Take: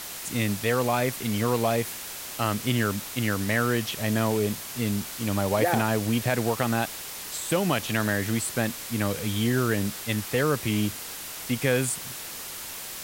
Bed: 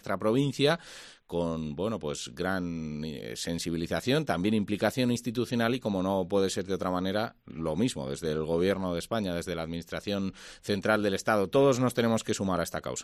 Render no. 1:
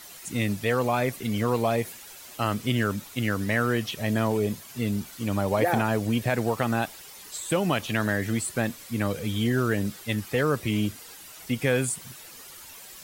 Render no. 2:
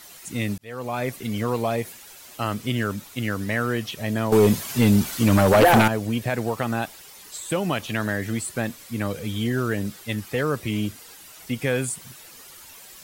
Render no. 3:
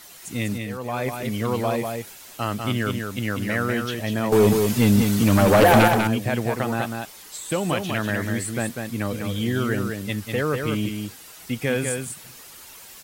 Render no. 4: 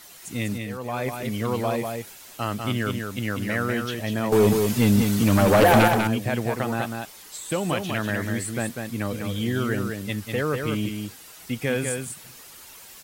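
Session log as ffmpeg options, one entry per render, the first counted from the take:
-af "afftdn=nr=11:nf=-38"
-filter_complex "[0:a]asettb=1/sr,asplit=3[a][b][c];[a]atrim=end=4.324[d];[b]atrim=start=4.32:end=5.88,asetpts=PTS-STARTPTS,afade=t=in:d=0.004:c=qsin,afade=t=out:st=1.556:d=0.004:c=qsin,aeval=exprs='0.335*sin(PI/2*2.51*val(0)/0.335)':c=same[e];[c]atrim=start=5.876[f];[d][e]acrossfade=d=0.004:c1=hsin:c2=qsin[g];[g][f]acrossfade=d=0.004:c1=qsin:c2=hsin,asplit=2[h][i];[h]atrim=end=0.58,asetpts=PTS-STARTPTS,afade=t=out:st=0.576:d=0.004:c=hsin[j];[i]atrim=start=0.58,asetpts=PTS-STARTPTS,afade=t=in:d=0.52[k];[j][k]concat=n=2:v=0:a=1"
-af "aecho=1:1:196:0.562"
-af "volume=-1.5dB"

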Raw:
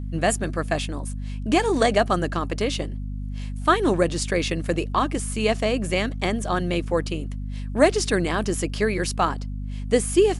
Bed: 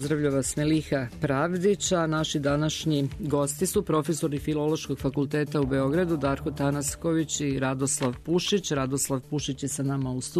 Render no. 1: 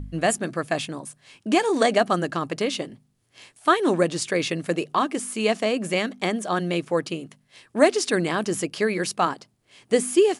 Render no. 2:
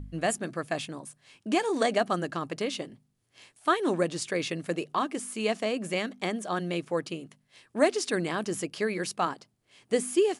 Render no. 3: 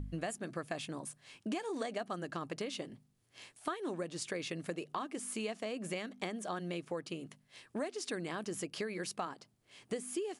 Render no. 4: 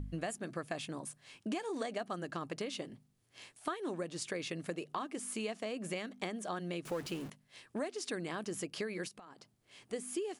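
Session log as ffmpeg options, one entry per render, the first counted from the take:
-af "bandreject=f=50:t=h:w=4,bandreject=f=100:t=h:w=4,bandreject=f=150:t=h:w=4,bandreject=f=200:t=h:w=4,bandreject=f=250:t=h:w=4"
-af "volume=-6dB"
-af "acompressor=threshold=-36dB:ratio=6"
-filter_complex "[0:a]asettb=1/sr,asplit=3[a][b][c];[a]atrim=end=6.854[d];[b]atrim=start=6.85:end=7.3,asetpts=PTS-STARTPTS,afade=t=in:d=0.004:c=qsin,afade=t=out:st=0.446:d=0.004:c=qsin,aeval=exprs='val(0)+0.5*0.00668*sgn(val(0))':c=same[e];[c]atrim=start=7.296[f];[d][e]acrossfade=d=0.004:c1=hsin:c2=qsin[g];[g][f]acrossfade=d=0.004:c1=qsin:c2=hsin,asplit=3[h][i][j];[h]afade=t=out:st=9.07:d=0.02[k];[i]acompressor=threshold=-49dB:ratio=12:attack=3.2:release=140:knee=1:detection=peak,afade=t=in:st=9.07:d=0.02,afade=t=out:st=9.92:d=0.02[l];[j]afade=t=in:st=9.92:d=0.02[m];[k][l][m]amix=inputs=3:normalize=0"

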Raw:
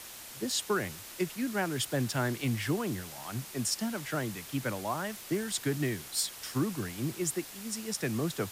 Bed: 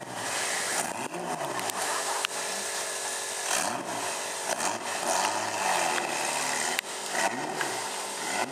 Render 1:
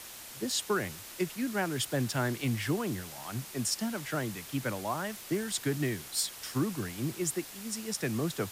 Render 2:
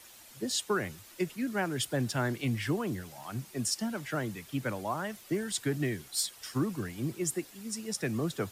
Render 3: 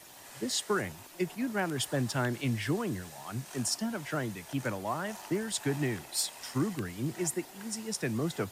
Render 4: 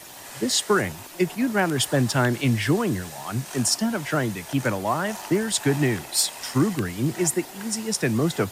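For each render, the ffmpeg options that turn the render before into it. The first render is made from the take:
-af anull
-af "afftdn=nr=9:nf=-46"
-filter_complex "[1:a]volume=-20.5dB[a];[0:a][a]amix=inputs=2:normalize=0"
-af "volume=9.5dB"

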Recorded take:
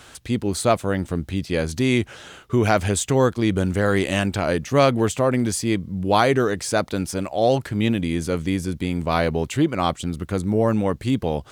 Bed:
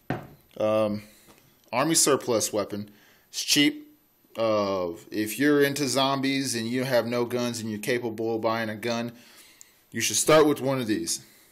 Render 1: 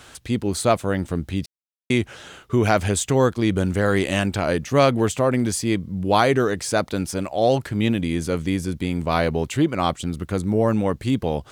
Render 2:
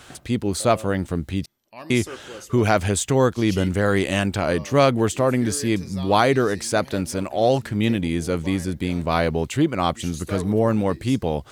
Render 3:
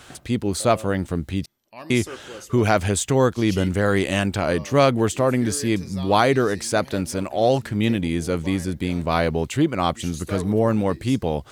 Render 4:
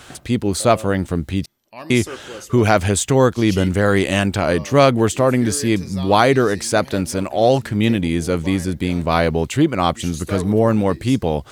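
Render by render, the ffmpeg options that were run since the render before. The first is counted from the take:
-filter_complex "[0:a]asplit=3[a][b][c];[a]atrim=end=1.46,asetpts=PTS-STARTPTS,afade=t=out:st=1.456:d=0.004:c=hsin[d];[b]atrim=start=1.46:end=1.9,asetpts=PTS-STARTPTS,volume=0[e];[c]atrim=start=1.9,asetpts=PTS-STARTPTS,afade=t=in:d=0.004:c=hsin[f];[d][e][f]concat=n=3:v=0:a=1"
-filter_complex "[1:a]volume=-15dB[a];[0:a][a]amix=inputs=2:normalize=0"
-af anull
-af "volume=4dB,alimiter=limit=-1dB:level=0:latency=1"

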